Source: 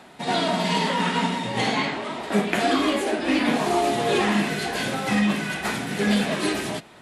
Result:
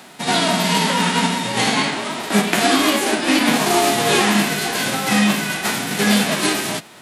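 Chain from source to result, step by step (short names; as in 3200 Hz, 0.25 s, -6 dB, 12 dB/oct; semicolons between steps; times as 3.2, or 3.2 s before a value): spectral whitening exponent 0.6; HPF 120 Hz 12 dB/oct; gain +5.5 dB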